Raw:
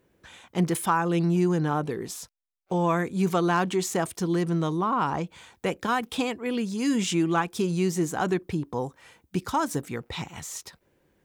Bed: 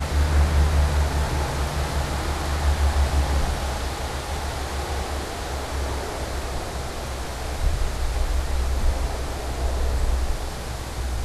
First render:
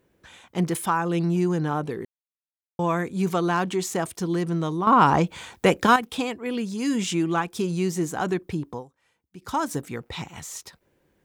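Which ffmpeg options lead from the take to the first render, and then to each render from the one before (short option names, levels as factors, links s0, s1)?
-filter_complex "[0:a]asplit=7[s0][s1][s2][s3][s4][s5][s6];[s0]atrim=end=2.05,asetpts=PTS-STARTPTS,afade=t=out:st=2.046:d=0.004:c=hsin[s7];[s1]atrim=start=2.05:end=2.79,asetpts=PTS-STARTPTS,volume=0[s8];[s2]atrim=start=2.79:end=4.872,asetpts=PTS-STARTPTS,afade=t=in:d=0.004:c=hsin[s9];[s3]atrim=start=4.868:end=5.962,asetpts=PTS-STARTPTS,volume=2.82[s10];[s4]atrim=start=5.958:end=8.84,asetpts=PTS-STARTPTS,afade=t=out:st=2.752:d=0.13:silence=0.158489[s11];[s5]atrim=start=8.84:end=9.4,asetpts=PTS-STARTPTS,volume=0.158[s12];[s6]atrim=start=9.4,asetpts=PTS-STARTPTS,afade=t=in:d=0.13:silence=0.158489[s13];[s7][s8][s9]concat=n=3:v=0:a=1[s14];[s14][s10]acrossfade=d=0.004:c1=hsin:c2=hsin[s15];[s11][s12][s13]concat=n=3:v=0:a=1[s16];[s15][s16]acrossfade=d=0.004:c1=hsin:c2=hsin"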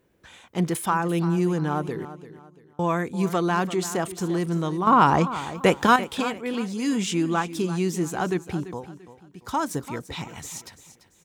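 -af "aecho=1:1:341|682|1023:0.2|0.0658|0.0217"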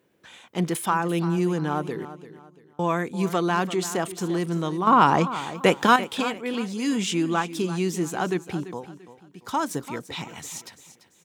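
-af "highpass=140,equalizer=f=3100:w=1.5:g=2.5"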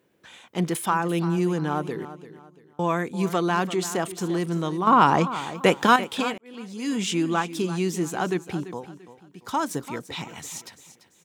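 -filter_complex "[0:a]asplit=2[s0][s1];[s0]atrim=end=6.38,asetpts=PTS-STARTPTS,afade=t=out:st=6.376:d=0.004:c=hsin[s2];[s1]atrim=start=6.38,asetpts=PTS-STARTPTS,afade=t=in:d=0.69[s3];[s2][s3]concat=n=2:v=0:a=1"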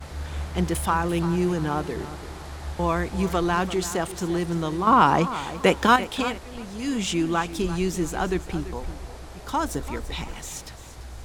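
-filter_complex "[1:a]volume=0.237[s0];[0:a][s0]amix=inputs=2:normalize=0"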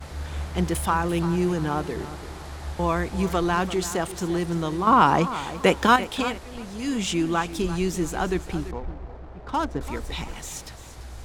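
-filter_complex "[0:a]asettb=1/sr,asplit=3[s0][s1][s2];[s0]atrim=end=8.714[s3];[s1]atrim=start=8.71:end=9.81,asetpts=PTS-STARTPTS,afade=t=in:d=0.004:c=qsin,afade=t=out:st=1.096:d=0.004:c=qsin,adynamicsmooth=sensitivity=4.5:basefreq=1100[s4];[s2]atrim=start=9.806[s5];[s3][s4]acrossfade=d=0.004:c1=hsin:c2=qsin[s6];[s6][s5]acrossfade=d=0.004:c1=qsin:c2=hsin"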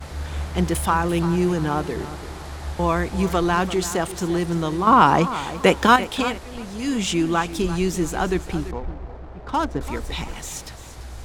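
-af "volume=1.41"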